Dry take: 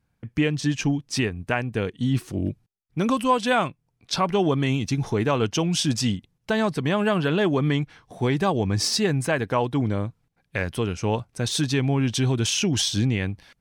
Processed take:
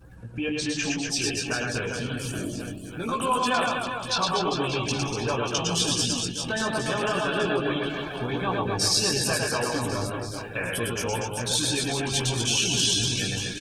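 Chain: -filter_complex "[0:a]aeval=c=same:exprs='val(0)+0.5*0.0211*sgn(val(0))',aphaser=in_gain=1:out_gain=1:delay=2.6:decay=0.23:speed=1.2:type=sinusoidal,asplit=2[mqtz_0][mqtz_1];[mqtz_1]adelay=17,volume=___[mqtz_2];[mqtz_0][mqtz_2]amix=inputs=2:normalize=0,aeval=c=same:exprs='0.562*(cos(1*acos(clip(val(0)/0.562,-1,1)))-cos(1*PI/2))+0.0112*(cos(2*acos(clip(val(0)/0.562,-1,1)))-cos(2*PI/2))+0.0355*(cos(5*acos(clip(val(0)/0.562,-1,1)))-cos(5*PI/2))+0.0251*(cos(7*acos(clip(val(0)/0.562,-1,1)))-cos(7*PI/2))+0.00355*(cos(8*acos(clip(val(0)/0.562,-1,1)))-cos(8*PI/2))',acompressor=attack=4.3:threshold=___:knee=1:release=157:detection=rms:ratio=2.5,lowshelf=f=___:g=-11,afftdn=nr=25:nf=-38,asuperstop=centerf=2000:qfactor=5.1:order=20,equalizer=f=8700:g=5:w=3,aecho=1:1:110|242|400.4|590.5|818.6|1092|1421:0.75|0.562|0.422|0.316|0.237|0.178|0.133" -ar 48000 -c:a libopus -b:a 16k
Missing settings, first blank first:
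-3.5dB, -21dB, 440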